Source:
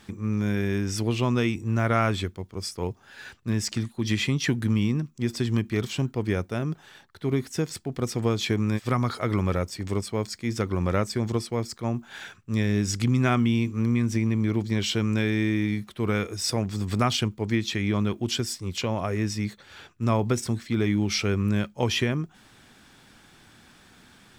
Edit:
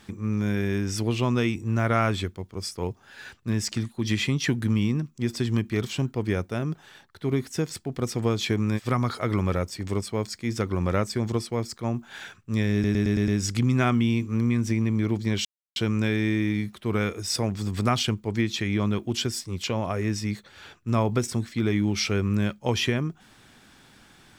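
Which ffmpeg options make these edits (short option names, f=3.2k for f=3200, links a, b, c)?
-filter_complex "[0:a]asplit=7[a][b][c][d][e][f][g];[a]atrim=end=12.842[h];[b]atrim=start=12.728:end=12.842[i];[c]atrim=start=12.728:end=12.842[j];[d]atrim=start=12.728:end=12.842[k];[e]atrim=start=12.728:end=12.842[l];[f]atrim=start=12.728:end=14.9,asetpts=PTS-STARTPTS,afade=t=out:st=2.168:d=0.004:c=hsin,apad=pad_dur=0.31[m];[g]atrim=start=14.9,asetpts=PTS-STARTPTS,afade=t=in:d=0.004:c=hsin[n];[h][i]acrossfade=d=0.004:c1=hsin:c2=hsin[o];[o][j]acrossfade=d=0.004:c1=hsin:c2=hsin[p];[p][k]acrossfade=d=0.004:c1=hsin:c2=hsin[q];[q][l]acrossfade=d=0.004:c1=hsin:c2=hsin[r];[m][n]concat=n=2:v=0:a=1[s];[r][s]acrossfade=d=0.004:c1=hsin:c2=hsin"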